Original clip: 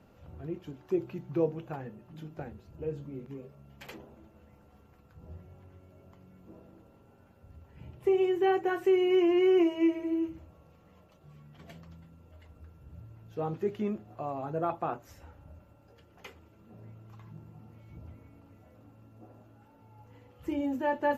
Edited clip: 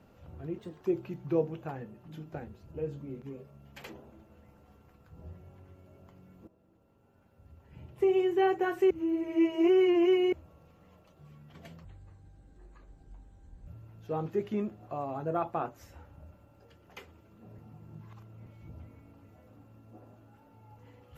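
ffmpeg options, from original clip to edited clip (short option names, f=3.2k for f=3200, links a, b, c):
-filter_complex "[0:a]asplit=10[a][b][c][d][e][f][g][h][i][j];[a]atrim=end=0.584[k];[b]atrim=start=0.58:end=0.85,asetpts=PTS-STARTPTS,asetrate=52920,aresample=44100,atrim=end_sample=9922,asetpts=PTS-STARTPTS[l];[c]atrim=start=0.846:end=6.52,asetpts=PTS-STARTPTS,afade=t=out:st=5.67:d=0.004:c=hsin:silence=0.16788[m];[d]atrim=start=6.52:end=8.952,asetpts=PTS-STARTPTS,afade=t=in:d=1.62:silence=0.16788[n];[e]atrim=start=8.948:end=10.372,asetpts=PTS-STARTPTS,areverse[o];[f]atrim=start=10.368:end=11.894[p];[g]atrim=start=11.89:end=12.95,asetpts=PTS-STARTPTS,asetrate=25578,aresample=44100[q];[h]atrim=start=12.946:end=16.862[r];[i]atrim=start=16.858:end=17.742,asetpts=PTS-STARTPTS,areverse[s];[j]atrim=start=17.738[t];[k][l]acrossfade=d=0.004:c1=hsin:c2=hsin[u];[m][n]concat=n=2:v=0:a=1[v];[u][v]acrossfade=d=0.004:c1=hsin:c2=hsin[w];[w][o]acrossfade=d=0.004:c1=hsin:c2=hsin[x];[x][p]acrossfade=d=0.004:c1=hsin:c2=hsin[y];[y][q]acrossfade=d=0.004:c1=hsin:c2=hsin[z];[z][r]acrossfade=d=0.004:c1=hsin:c2=hsin[aa];[aa][s]acrossfade=d=0.004:c1=hsin:c2=hsin[ab];[ab][t]acrossfade=d=0.004:c1=hsin:c2=hsin"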